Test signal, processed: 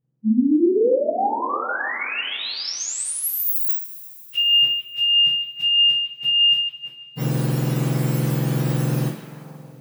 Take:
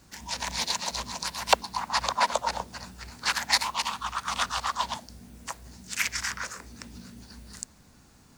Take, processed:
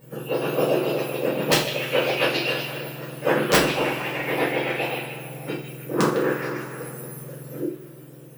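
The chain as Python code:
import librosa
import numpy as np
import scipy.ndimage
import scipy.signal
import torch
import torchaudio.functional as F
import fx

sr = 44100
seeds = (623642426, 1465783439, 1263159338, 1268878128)

p1 = fx.octave_mirror(x, sr, pivot_hz=1600.0)
p2 = fx.high_shelf(p1, sr, hz=11000.0, db=11.0)
p3 = (np.mod(10.0 ** (12.0 / 20.0) * p2 + 1.0, 2.0) - 1.0) / 10.0 ** (12.0 / 20.0)
p4 = p3 + fx.echo_stepped(p3, sr, ms=154, hz=3000.0, octaves=-0.7, feedback_pct=70, wet_db=-7.0, dry=0)
y = fx.rev_double_slope(p4, sr, seeds[0], early_s=0.38, late_s=3.3, knee_db=-20, drr_db=-4.5)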